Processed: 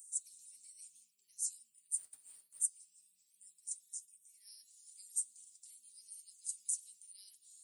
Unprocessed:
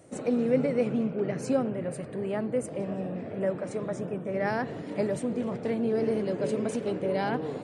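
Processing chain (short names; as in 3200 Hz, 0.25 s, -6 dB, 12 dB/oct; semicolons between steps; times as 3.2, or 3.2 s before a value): inverse Chebyshev high-pass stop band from 1500 Hz, stop band 80 dB; 1.97–2.61 modulation noise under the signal 15 dB; flange 0.29 Hz, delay 5 ms, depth 3.9 ms, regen +61%; gain +17.5 dB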